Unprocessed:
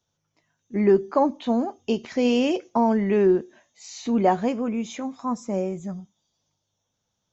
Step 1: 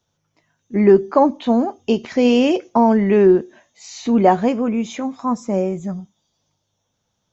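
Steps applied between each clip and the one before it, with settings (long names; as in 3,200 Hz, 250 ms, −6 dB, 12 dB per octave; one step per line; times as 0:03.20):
high-shelf EQ 4,600 Hz −4.5 dB
level +6.5 dB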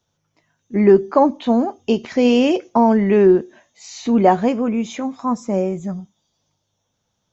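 no processing that can be heard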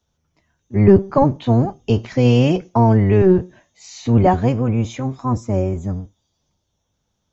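sub-octave generator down 1 octave, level +3 dB
level −2 dB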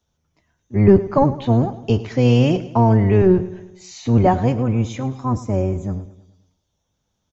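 repeating echo 107 ms, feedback 52%, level −16.5 dB
level −1 dB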